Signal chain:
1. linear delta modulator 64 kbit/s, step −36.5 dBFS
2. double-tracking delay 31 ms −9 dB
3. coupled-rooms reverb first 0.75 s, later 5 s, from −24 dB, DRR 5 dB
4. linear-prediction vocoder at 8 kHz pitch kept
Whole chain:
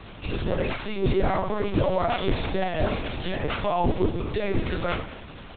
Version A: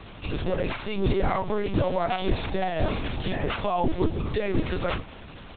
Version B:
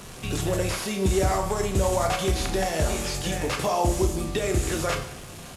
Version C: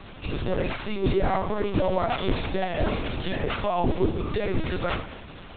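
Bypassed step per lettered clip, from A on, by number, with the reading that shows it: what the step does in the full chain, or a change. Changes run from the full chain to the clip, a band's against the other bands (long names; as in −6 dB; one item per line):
3, change in momentary loudness spread −2 LU
4, 4 kHz band +3.0 dB
2, change in momentary loudness spread −1 LU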